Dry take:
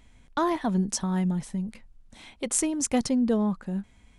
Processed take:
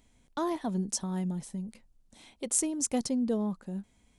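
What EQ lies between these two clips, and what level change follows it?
low-shelf EQ 190 Hz −11.5 dB
parametric band 1,700 Hz −10 dB 2.6 octaves
0.0 dB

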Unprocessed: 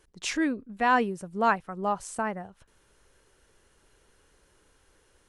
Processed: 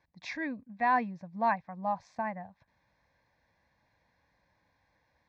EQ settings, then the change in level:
band-pass filter 100–3,600 Hz
high-frequency loss of the air 63 metres
phaser with its sweep stopped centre 2,000 Hz, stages 8
−1.5 dB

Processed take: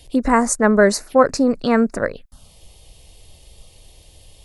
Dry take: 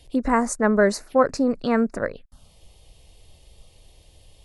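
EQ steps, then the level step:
high-shelf EQ 4,700 Hz +5.5 dB
+4.5 dB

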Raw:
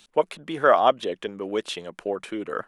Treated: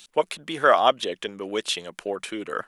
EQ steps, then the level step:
high-shelf EQ 2,000 Hz +11 dB
−2.0 dB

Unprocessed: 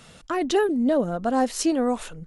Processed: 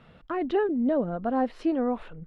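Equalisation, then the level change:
dynamic equaliser 9,400 Hz, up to −3 dB, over −43 dBFS, Q 1.2
high-frequency loss of the air 450 metres
−2.5 dB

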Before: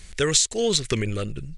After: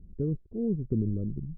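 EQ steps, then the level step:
transistor ladder low-pass 320 Hz, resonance 25%
low-shelf EQ 120 Hz −7 dB
+7.0 dB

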